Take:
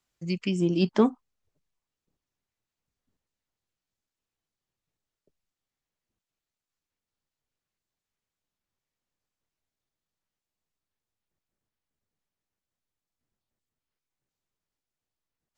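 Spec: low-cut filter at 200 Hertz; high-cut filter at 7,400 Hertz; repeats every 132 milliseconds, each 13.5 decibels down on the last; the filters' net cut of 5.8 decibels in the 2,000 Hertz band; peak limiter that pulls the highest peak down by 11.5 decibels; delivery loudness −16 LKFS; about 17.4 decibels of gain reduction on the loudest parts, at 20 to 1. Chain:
high-pass filter 200 Hz
low-pass filter 7,400 Hz
parametric band 2,000 Hz −8.5 dB
downward compressor 20 to 1, threshold −33 dBFS
brickwall limiter −34.5 dBFS
repeating echo 132 ms, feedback 21%, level −13.5 dB
level +27.5 dB

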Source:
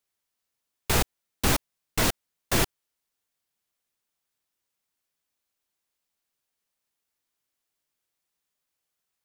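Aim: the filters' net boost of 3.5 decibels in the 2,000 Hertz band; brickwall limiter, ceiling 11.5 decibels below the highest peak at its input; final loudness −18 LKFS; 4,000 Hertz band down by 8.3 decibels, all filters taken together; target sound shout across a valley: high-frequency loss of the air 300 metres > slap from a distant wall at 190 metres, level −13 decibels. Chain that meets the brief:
parametric band 2,000 Hz +9 dB
parametric band 4,000 Hz −4.5 dB
brickwall limiter −19 dBFS
high-frequency loss of the air 300 metres
slap from a distant wall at 190 metres, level −13 dB
level +20 dB

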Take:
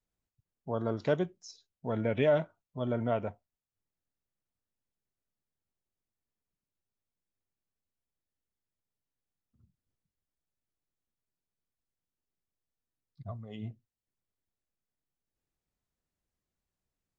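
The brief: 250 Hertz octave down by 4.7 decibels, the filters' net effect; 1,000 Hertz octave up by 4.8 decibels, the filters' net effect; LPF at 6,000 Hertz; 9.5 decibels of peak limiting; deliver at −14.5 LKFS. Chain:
low-pass filter 6,000 Hz
parametric band 250 Hz −6.5 dB
parametric band 1,000 Hz +7.5 dB
level +22 dB
brickwall limiter −0.5 dBFS

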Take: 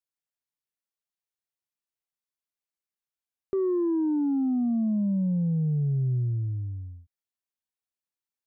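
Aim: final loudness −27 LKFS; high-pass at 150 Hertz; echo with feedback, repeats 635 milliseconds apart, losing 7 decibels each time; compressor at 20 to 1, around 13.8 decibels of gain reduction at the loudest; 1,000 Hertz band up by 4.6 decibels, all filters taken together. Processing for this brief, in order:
high-pass filter 150 Hz
parametric band 1,000 Hz +5.5 dB
downward compressor 20 to 1, threshold −37 dBFS
repeating echo 635 ms, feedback 45%, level −7 dB
level +13.5 dB

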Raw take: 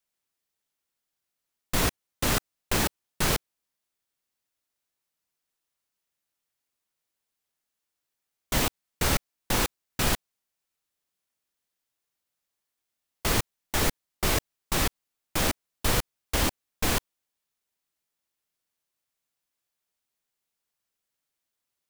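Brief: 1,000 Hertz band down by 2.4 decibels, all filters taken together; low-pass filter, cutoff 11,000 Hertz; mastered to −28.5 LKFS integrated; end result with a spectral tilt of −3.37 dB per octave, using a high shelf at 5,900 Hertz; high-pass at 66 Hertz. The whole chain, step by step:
high-pass filter 66 Hz
low-pass filter 11,000 Hz
parametric band 1,000 Hz −3 dB
high-shelf EQ 5,900 Hz −4 dB
level +2 dB

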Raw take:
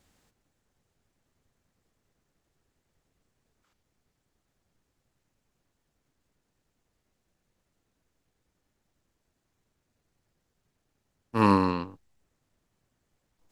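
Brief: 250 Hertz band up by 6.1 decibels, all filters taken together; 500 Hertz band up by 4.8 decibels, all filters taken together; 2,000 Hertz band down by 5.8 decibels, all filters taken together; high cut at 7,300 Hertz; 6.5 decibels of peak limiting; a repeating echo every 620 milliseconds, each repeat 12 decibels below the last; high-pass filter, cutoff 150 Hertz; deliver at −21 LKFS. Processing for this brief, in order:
high-pass filter 150 Hz
low-pass filter 7,300 Hz
parametric band 250 Hz +8 dB
parametric band 500 Hz +3.5 dB
parametric band 2,000 Hz −8.5 dB
brickwall limiter −12 dBFS
repeating echo 620 ms, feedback 25%, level −12 dB
level +5.5 dB

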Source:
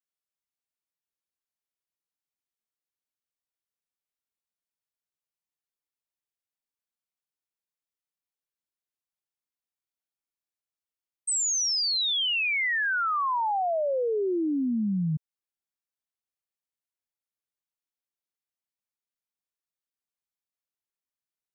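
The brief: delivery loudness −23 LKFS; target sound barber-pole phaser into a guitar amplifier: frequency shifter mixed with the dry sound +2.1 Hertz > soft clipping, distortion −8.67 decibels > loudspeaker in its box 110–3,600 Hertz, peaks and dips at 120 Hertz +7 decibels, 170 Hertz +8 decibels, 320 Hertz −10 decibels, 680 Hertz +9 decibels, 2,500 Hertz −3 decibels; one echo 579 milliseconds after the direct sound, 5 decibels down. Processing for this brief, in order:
single-tap delay 579 ms −5 dB
frequency shifter mixed with the dry sound +2.1 Hz
soft clipping −34 dBFS
loudspeaker in its box 110–3,600 Hz, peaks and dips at 120 Hz +7 dB, 170 Hz +8 dB, 320 Hz −10 dB, 680 Hz +9 dB, 2,500 Hz −3 dB
level +12 dB

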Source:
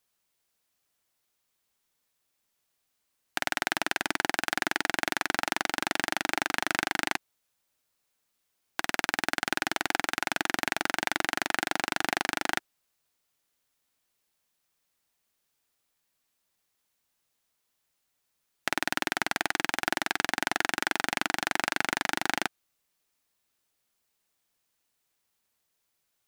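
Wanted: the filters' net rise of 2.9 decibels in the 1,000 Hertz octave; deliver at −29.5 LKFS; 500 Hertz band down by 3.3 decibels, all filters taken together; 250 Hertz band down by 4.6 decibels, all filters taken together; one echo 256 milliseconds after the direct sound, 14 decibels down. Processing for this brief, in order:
parametric band 250 Hz −3.5 dB
parametric band 500 Hz −7.5 dB
parametric band 1,000 Hz +6.5 dB
single-tap delay 256 ms −14 dB
level −1.5 dB

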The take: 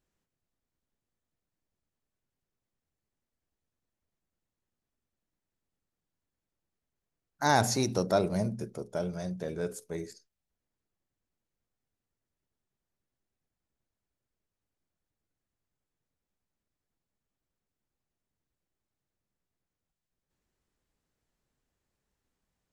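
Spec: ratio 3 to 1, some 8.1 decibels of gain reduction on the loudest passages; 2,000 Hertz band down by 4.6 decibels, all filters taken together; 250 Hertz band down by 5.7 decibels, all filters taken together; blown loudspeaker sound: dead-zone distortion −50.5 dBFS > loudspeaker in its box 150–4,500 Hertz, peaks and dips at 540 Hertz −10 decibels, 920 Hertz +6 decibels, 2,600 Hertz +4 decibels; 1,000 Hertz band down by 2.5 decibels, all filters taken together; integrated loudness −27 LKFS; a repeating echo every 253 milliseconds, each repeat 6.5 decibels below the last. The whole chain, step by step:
parametric band 250 Hz −6 dB
parametric band 1,000 Hz −5.5 dB
parametric band 2,000 Hz −4.5 dB
downward compressor 3 to 1, threshold −34 dBFS
repeating echo 253 ms, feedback 47%, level −6.5 dB
dead-zone distortion −50.5 dBFS
loudspeaker in its box 150–4,500 Hz, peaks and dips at 540 Hz −10 dB, 920 Hz +6 dB, 2,600 Hz +4 dB
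level +15 dB

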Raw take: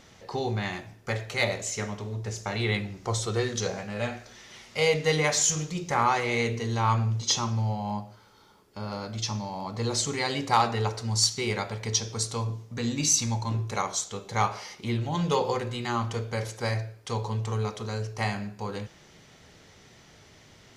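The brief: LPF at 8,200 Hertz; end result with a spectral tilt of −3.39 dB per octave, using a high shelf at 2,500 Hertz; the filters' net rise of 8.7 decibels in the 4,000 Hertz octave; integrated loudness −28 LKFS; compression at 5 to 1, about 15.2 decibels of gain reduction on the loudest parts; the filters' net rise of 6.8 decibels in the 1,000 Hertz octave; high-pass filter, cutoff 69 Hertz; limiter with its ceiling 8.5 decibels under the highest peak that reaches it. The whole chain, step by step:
high-pass filter 69 Hz
low-pass filter 8,200 Hz
parametric band 1,000 Hz +7.5 dB
high-shelf EQ 2,500 Hz +3.5 dB
parametric band 4,000 Hz +7.5 dB
downward compressor 5 to 1, threshold −28 dBFS
level +5 dB
brickwall limiter −16 dBFS

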